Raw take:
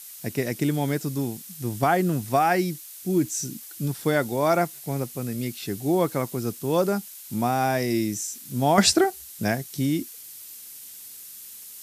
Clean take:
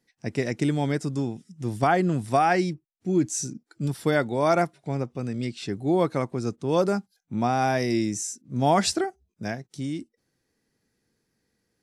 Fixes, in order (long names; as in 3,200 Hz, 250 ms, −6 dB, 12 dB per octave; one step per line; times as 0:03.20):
click removal
noise reduction from a noise print 30 dB
level 0 dB, from 0:08.78 −6.5 dB